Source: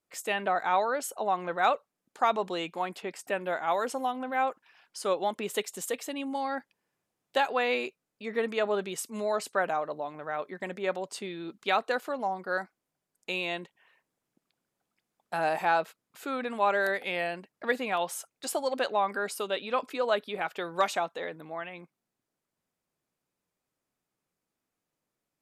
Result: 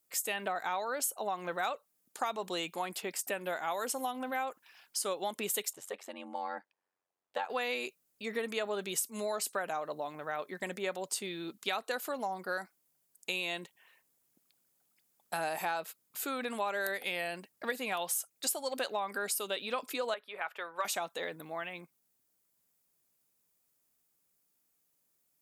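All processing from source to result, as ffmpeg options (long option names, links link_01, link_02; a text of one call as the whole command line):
ffmpeg -i in.wav -filter_complex "[0:a]asettb=1/sr,asplit=3[link_01][link_02][link_03];[link_01]atrim=end=5.734[link_04];[link_02]atrim=start=5.73:end=7.5,asetpts=PTS-STARTPTS,afade=type=in:duration=0.004:curve=qsin,afade=type=out:start_time=1.766:duration=0.004:curve=qsin,bandpass=frequency=860:width_type=q:width=0.84,aeval=exprs='val(0)*sin(2*PI*46*n/s)':channel_layout=same[link_05];[link_03]atrim=start=7.496[link_06];[link_04][link_05]acrossfade=duration=0.004:curve1=hsin:curve2=qsin[link_07];[link_07][link_06]acrossfade=duration=0.004:curve1=qsin:curve2=hsin,asettb=1/sr,asplit=3[link_08][link_09][link_10];[link_08]atrim=end=20.144[link_11];[link_09]atrim=start=20.14:end=20.85,asetpts=PTS-STARTPTS,afade=type=in:duration=0.004:curve=qsin,afade=type=out:start_time=0.706:duration=0.004:curve=qsin,acrossover=split=550 2500:gain=0.1 1 0.112[link_12][link_13][link_14];[link_12][link_13][link_14]amix=inputs=3:normalize=0,bandreject=frequency=760:width=9.7[link_15];[link_10]atrim=start=20.846[link_16];[link_11][link_15]acrossfade=duration=0.004:curve1=hsin:curve2=qsin[link_17];[link_17][link_16]acrossfade=duration=0.004:curve1=qsin:curve2=hsin,aemphasis=mode=production:type=75fm,acompressor=threshold=-30dB:ratio=4,volume=-1.5dB" out.wav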